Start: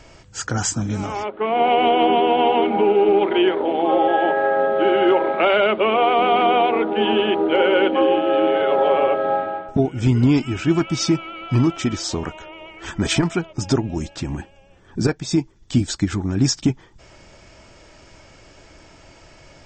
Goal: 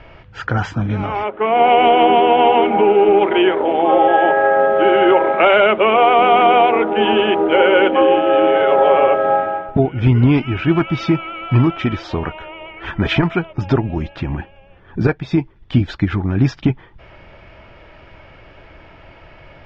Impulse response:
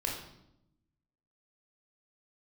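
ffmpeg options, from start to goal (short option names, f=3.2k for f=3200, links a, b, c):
-af "lowpass=f=3k:w=0.5412,lowpass=f=3k:w=1.3066,equalizer=f=270:w=1.1:g=-4.5,volume=6dB"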